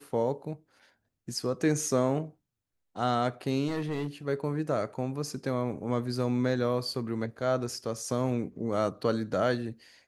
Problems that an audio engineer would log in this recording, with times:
0:03.67–0:04.08: clipping −27.5 dBFS

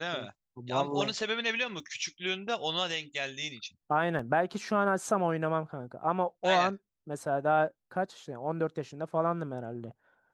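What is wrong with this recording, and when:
0:01.80: drop-out 2.3 ms
0:04.19: drop-out 3.6 ms

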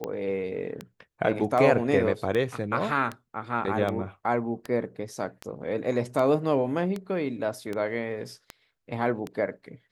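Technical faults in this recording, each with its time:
scratch tick 78 rpm −18 dBFS

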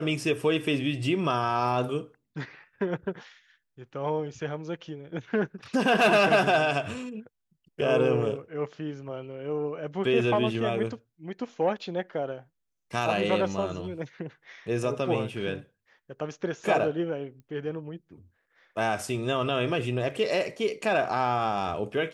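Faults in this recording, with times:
0:17.40: click −39 dBFS

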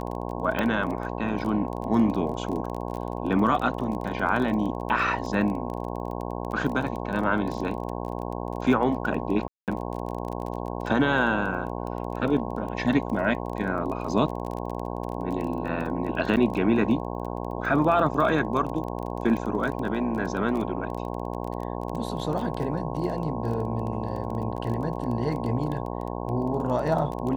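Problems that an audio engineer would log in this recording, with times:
mains buzz 60 Hz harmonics 18 −32 dBFS
surface crackle 20 per second −31 dBFS
0:00.59: click −14 dBFS
0:09.48–0:09.68: drop-out 198 ms
0:15.22: drop-out 3.7 ms
0:16.36–0:16.37: drop-out 8.7 ms

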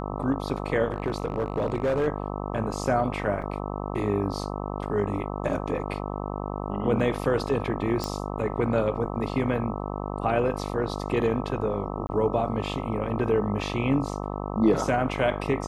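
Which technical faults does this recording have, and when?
mains buzz 50 Hz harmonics 26 −32 dBFS
0:00.92–0:02.08: clipping −20.5 dBFS
0:03.42: drop-out 4.2 ms
0:08.04: click −15 dBFS
0:12.07–0:12.09: drop-out 20 ms

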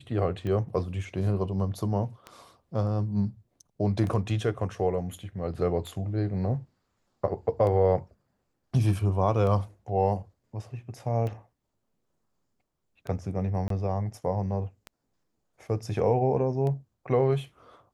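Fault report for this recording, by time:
scratch tick 33 1/3 rpm −23 dBFS
0:13.68–0:13.70: drop-out 23 ms

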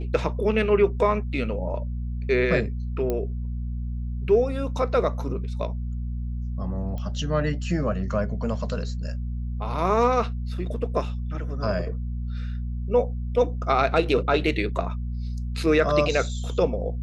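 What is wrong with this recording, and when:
mains hum 60 Hz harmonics 4 −29 dBFS
0:03.10: click −14 dBFS
0:06.98: click −23 dBFS

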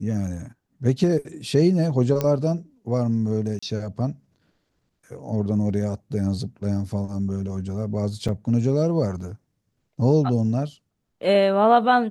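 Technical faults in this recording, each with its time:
0:02.21: click −10 dBFS
0:03.59–0:03.62: drop-out 35 ms
0:08.28–0:08.29: drop-out 6.1 ms

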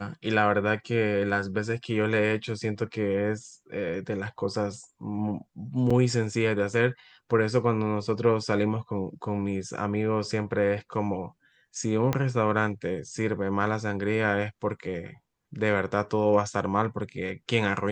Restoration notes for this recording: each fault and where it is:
0:05.90–0:05.91: drop-out 5 ms
0:12.13: click −12 dBFS

